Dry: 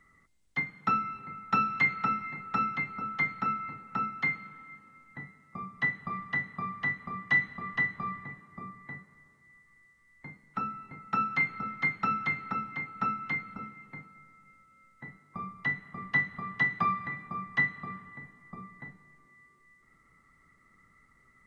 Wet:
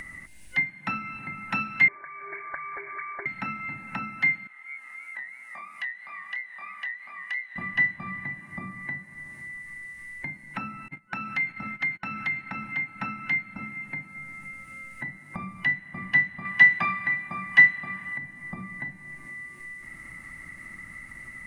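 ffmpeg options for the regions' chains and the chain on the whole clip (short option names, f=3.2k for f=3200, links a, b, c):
-filter_complex "[0:a]asettb=1/sr,asplit=3[a][b][c];[a]atrim=end=1.884[d];[b]atrim=start=1.88:end=3.26,asetpts=PTS-STARTPTS,afade=t=in:d=0.004:c=qsin,afade=t=out:st=1.376:d=0.004:c=qsin,highpass=f=270:w=0.5412,highpass=f=270:w=1.3066,acompressor=threshold=-35dB:ratio=10:attack=3.2:release=140:knee=1:detection=peak,lowpass=f=2.1k:t=q:w=0.5098,lowpass=f=2.1k:t=q:w=0.6013,lowpass=f=2.1k:t=q:w=0.9,lowpass=f=2.1k:t=q:w=2.563,afreqshift=-2500[e];[c]atrim=start=3.256[f];[d][e]acrossfade=d=0.004:c1=hsin:c2=qsin[g];[g][f]acrossfade=d=0.004:c1=qsin:c2=hsin,asettb=1/sr,asplit=3[h][i][j];[h]atrim=end=4.474[k];[i]atrim=start=4.47:end=7.56,asetpts=PTS-STARTPTS,afade=t=in:d=0.004:c=qsin,afade=t=out:st=3.086:d=0.004:c=qsin,highpass=860,acompressor=threshold=-54dB:ratio=1.5:attack=3.2:release=140:knee=1:detection=peak,flanger=delay=18:depth=7.4:speed=3[l];[j]atrim=start=7.556[m];[k][l]acrossfade=d=0.004:c1=hsin:c2=qsin[n];[n][m]acrossfade=d=0.004:c1=qsin:c2=hsin,asettb=1/sr,asplit=3[o][p][q];[o]atrim=end=10.884[r];[p]atrim=start=10.88:end=12.69,asetpts=PTS-STARTPTS,afade=t=in:d=0.004:c=qsin,afade=t=out:st=1.806:d=0.004:c=qsin,agate=range=-26dB:threshold=-44dB:ratio=16:release=100:detection=peak,acompressor=threshold=-31dB:ratio=3:attack=3.2:release=140:knee=1:detection=peak[s];[q]atrim=start=12.686[t];[r][s]acrossfade=d=0.004:c1=hsin:c2=qsin[u];[u][t]acrossfade=d=0.004:c1=qsin:c2=hsin,asettb=1/sr,asplit=3[v][w][x];[v]atrim=end=16.454[y];[w]atrim=start=16.45:end=18.18,asetpts=PTS-STARTPTS,afade=t=in:d=0.004:c=qsin,afade=t=out:st=1.726:d=0.004:c=qsin,acontrast=81,lowshelf=f=460:g=-9[z];[x]atrim=start=18.176[aa];[y][z]acrossfade=d=0.004:c1=hsin:c2=qsin[ab];[ab][aa]acrossfade=d=0.004:c1=qsin:c2=hsin,superequalizer=7b=0.316:10b=0.447:11b=2:12b=2.24:16b=2.51,acompressor=mode=upward:threshold=-27dB:ratio=2.5"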